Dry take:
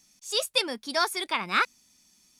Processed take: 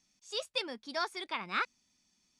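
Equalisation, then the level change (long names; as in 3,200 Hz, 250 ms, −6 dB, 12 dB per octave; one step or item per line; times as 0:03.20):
high-frequency loss of the air 100 metres
high-shelf EQ 6,400 Hz +4.5 dB
−8.0 dB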